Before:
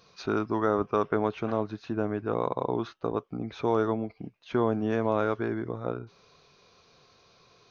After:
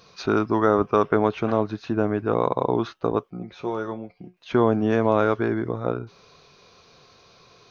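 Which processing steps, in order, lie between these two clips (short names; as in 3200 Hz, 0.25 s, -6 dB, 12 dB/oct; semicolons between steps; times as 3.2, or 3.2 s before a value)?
3.3–4.37 resonator 180 Hz, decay 0.19 s, harmonics all, mix 80%; gain +6.5 dB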